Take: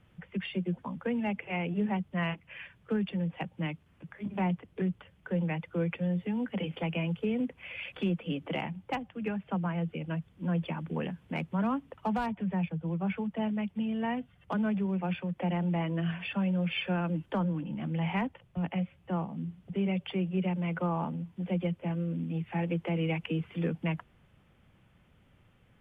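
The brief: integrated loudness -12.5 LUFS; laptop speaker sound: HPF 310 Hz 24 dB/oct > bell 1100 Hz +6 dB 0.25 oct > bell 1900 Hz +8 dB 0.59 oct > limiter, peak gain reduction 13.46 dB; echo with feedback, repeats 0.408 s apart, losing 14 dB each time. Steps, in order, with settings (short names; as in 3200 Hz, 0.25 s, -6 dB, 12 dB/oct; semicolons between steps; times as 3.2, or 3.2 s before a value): HPF 310 Hz 24 dB/oct; bell 1100 Hz +6 dB 0.25 oct; bell 1900 Hz +8 dB 0.59 oct; feedback echo 0.408 s, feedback 20%, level -14 dB; gain +28.5 dB; limiter -2 dBFS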